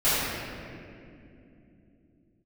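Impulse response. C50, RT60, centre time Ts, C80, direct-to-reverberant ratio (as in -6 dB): -4.5 dB, 2.7 s, 0.165 s, -2.0 dB, -17.0 dB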